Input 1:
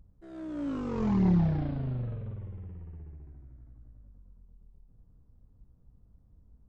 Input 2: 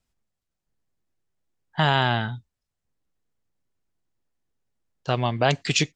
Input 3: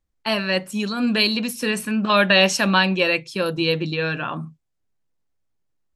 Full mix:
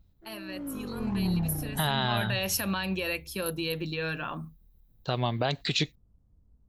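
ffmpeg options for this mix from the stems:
-filter_complex "[0:a]volume=-4dB[a];[1:a]equalizer=f=3.9k:t=o:w=0.35:g=14.5,volume=-1dB[b];[2:a]alimiter=limit=-13.5dB:level=0:latency=1:release=96,highshelf=f=8.9k:g=9.5,aexciter=amount=5.3:drive=8.8:freq=11k,volume=-8dB,afade=t=in:st=1.91:d=0.47:silence=0.316228[c];[a][b]amix=inputs=2:normalize=0,highshelf=f=3.5k:g=-9,alimiter=limit=-14.5dB:level=0:latency=1:release=154,volume=0dB[d];[c][d]amix=inputs=2:normalize=0"

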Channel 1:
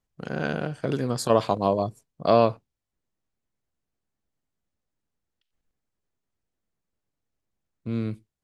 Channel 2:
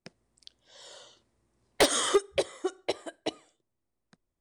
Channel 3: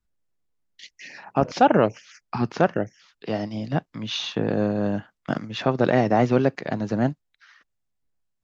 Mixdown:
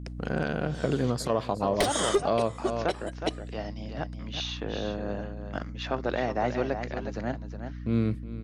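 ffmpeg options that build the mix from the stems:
-filter_complex "[0:a]highshelf=f=4.5k:g=-5.5,volume=2.5dB,asplit=2[a][b];[b]volume=-15dB[c];[1:a]lowshelf=f=180:g=10,volume=2.5dB[d];[2:a]lowshelf=f=280:g=-11.5,adelay=250,volume=-5.5dB,asplit=2[e][f];[f]volume=-8.5dB[g];[c][g]amix=inputs=2:normalize=0,aecho=0:1:366:1[h];[a][d][e][h]amix=inputs=4:normalize=0,aeval=exprs='val(0)+0.0141*(sin(2*PI*60*n/s)+sin(2*PI*2*60*n/s)/2+sin(2*PI*3*60*n/s)/3+sin(2*PI*4*60*n/s)/4+sin(2*PI*5*60*n/s)/5)':c=same,alimiter=limit=-14.5dB:level=0:latency=1:release=414"

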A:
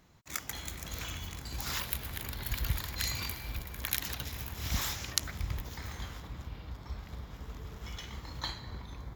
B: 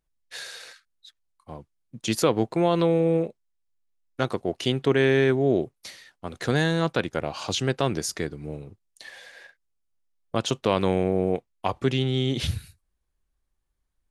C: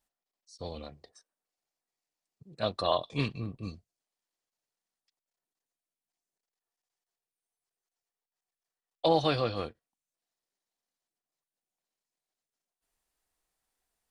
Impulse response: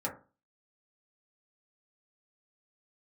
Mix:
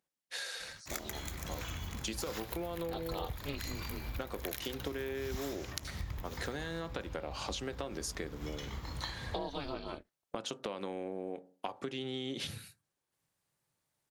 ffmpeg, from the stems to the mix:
-filter_complex "[0:a]adynamicequalizer=threshold=0.00282:dfrequency=2000:dqfactor=0.7:tfrequency=2000:tqfactor=0.7:attack=5:release=100:ratio=0.375:range=3:mode=cutabove:tftype=highshelf,adelay=600,volume=2.5dB[a];[1:a]highpass=220,acompressor=threshold=-25dB:ratio=6,volume=-2.5dB,asplit=2[b][c];[c]volume=-14dB[d];[2:a]aeval=exprs='val(0)*sin(2*PI*140*n/s)':c=same,adelay=300,volume=2dB[e];[3:a]atrim=start_sample=2205[f];[d][f]afir=irnorm=-1:irlink=0[g];[a][b][e][g]amix=inputs=4:normalize=0,acompressor=threshold=-36dB:ratio=5"

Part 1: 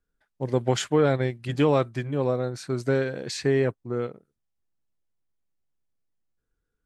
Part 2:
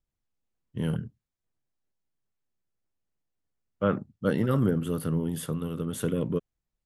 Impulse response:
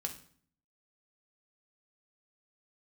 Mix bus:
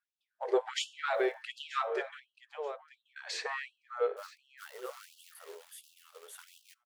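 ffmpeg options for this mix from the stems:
-filter_complex "[0:a]lowpass=f=1.6k:p=1,bandreject=f=520:w=12,bandreject=f=112.3:t=h:w=4,bandreject=f=224.6:t=h:w=4,bandreject=f=336.9:t=h:w=4,bandreject=f=449.2:t=h:w=4,bandreject=f=561.5:t=h:w=4,bandreject=f=673.8:t=h:w=4,bandreject=f=786.1:t=h:w=4,bandreject=f=898.4:t=h:w=4,bandreject=f=1.0107k:t=h:w=4,bandreject=f=1.123k:t=h:w=4,bandreject=f=1.2353k:t=h:w=4,bandreject=f=1.3476k:t=h:w=4,bandreject=f=1.4599k:t=h:w=4,bandreject=f=1.5722k:t=h:w=4,bandreject=f=1.6845k:t=h:w=4,bandreject=f=1.7968k:t=h:w=4,volume=1dB,asplit=3[a][b][c];[a]atrim=end=2.2,asetpts=PTS-STARTPTS,afade=t=out:st=2.196:d=0.004:c=hsin[d];[b]atrim=start=2.2:end=3.16,asetpts=PTS-STARTPTS,volume=0[e];[c]atrim=start=3.16,asetpts=PTS-STARTPTS,afade=t=in:d=0.004:c=hsin[f];[d][e][f]concat=n=3:v=0:a=1,asplit=4[g][h][i][j];[h]volume=-5.5dB[k];[i]volume=-14.5dB[l];[1:a]acrusher=bits=4:mode=log:mix=0:aa=0.000001,adelay=350,volume=-12.5dB,asplit=2[m][n];[n]volume=-18dB[o];[j]apad=whole_len=317548[p];[m][p]sidechaincompress=threshold=-27dB:ratio=8:attack=16:release=1470[q];[2:a]atrim=start_sample=2205[r];[k][o]amix=inputs=2:normalize=0[s];[s][r]afir=irnorm=-1:irlink=0[t];[l]aecho=0:1:932|1864|2796|3728:1|0.26|0.0676|0.0176[u];[g][q][t][u]amix=inputs=4:normalize=0,asoftclip=type=tanh:threshold=-12.5dB,afftfilt=real='re*gte(b*sr/1024,360*pow(2700/360,0.5+0.5*sin(2*PI*1.4*pts/sr)))':imag='im*gte(b*sr/1024,360*pow(2700/360,0.5+0.5*sin(2*PI*1.4*pts/sr)))':win_size=1024:overlap=0.75"

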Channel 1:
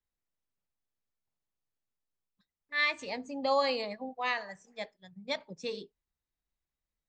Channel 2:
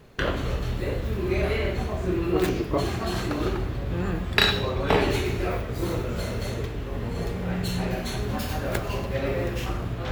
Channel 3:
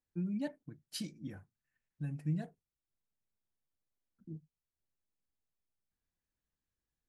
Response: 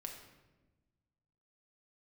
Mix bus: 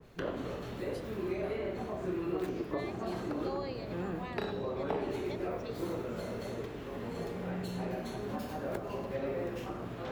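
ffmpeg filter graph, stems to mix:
-filter_complex "[0:a]volume=-9dB[a];[1:a]adynamicequalizer=threshold=0.00708:dfrequency=1700:dqfactor=0.7:tfrequency=1700:tqfactor=0.7:attack=5:release=100:ratio=0.375:range=3.5:mode=cutabove:tftype=highshelf,volume=-5dB[b];[2:a]volume=-10dB[c];[a][b][c]amix=inputs=3:normalize=0,acrossover=split=160|930[d][e][f];[d]acompressor=threshold=-55dB:ratio=4[g];[e]acompressor=threshold=-32dB:ratio=4[h];[f]acompressor=threshold=-48dB:ratio=4[i];[g][h][i]amix=inputs=3:normalize=0"

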